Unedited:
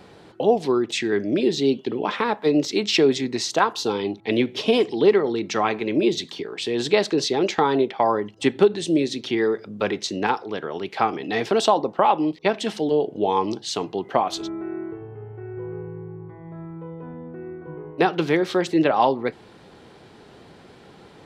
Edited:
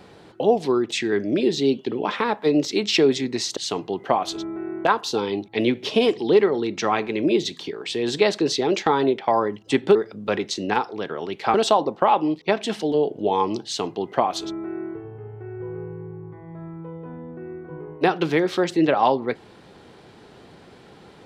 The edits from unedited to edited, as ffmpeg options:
ffmpeg -i in.wav -filter_complex "[0:a]asplit=5[link_01][link_02][link_03][link_04][link_05];[link_01]atrim=end=3.572[link_06];[link_02]atrim=start=13.618:end=14.902[link_07];[link_03]atrim=start=3.568:end=8.672[link_08];[link_04]atrim=start=9.478:end=11.072[link_09];[link_05]atrim=start=11.508[link_10];[link_06][link_07]acrossfade=duration=0.004:curve1=hsin:curve2=hsin[link_11];[link_11][link_08]acrossfade=duration=0.004:curve1=hsin:curve2=hsin[link_12];[link_12][link_09]acrossfade=duration=0.004:curve1=hsin:curve2=hsin[link_13];[link_13][link_10]acrossfade=duration=0.004:curve1=hsin:curve2=hsin" out.wav

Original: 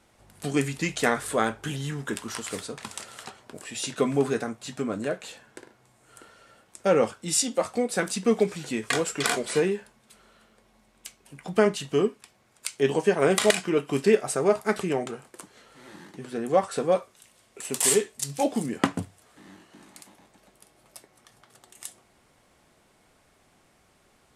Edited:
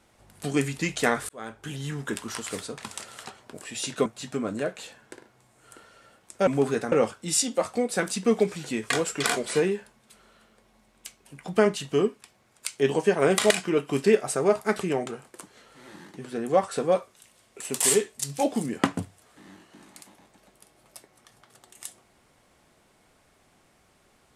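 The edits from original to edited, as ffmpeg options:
ffmpeg -i in.wav -filter_complex "[0:a]asplit=5[link_01][link_02][link_03][link_04][link_05];[link_01]atrim=end=1.29,asetpts=PTS-STARTPTS,afade=type=out:start_time=1.286:duration=0.004:curve=hsin[link_06];[link_02]atrim=start=1.29:end=4.062,asetpts=PTS-STARTPTS,afade=type=in:duration=0.66[link_07];[link_03]atrim=start=4.508:end=6.922[link_08];[link_04]atrim=start=4.058:end=4.512[link_09];[link_05]atrim=start=6.918[link_10];[link_06][link_07]concat=n=2:v=0:a=1[link_11];[link_11][link_08]acrossfade=duration=0.004:curve1=hsin:curve2=hsin[link_12];[link_12][link_09]acrossfade=duration=0.004:curve1=hsin:curve2=hsin[link_13];[link_13][link_10]acrossfade=duration=0.004:curve1=hsin:curve2=hsin" out.wav

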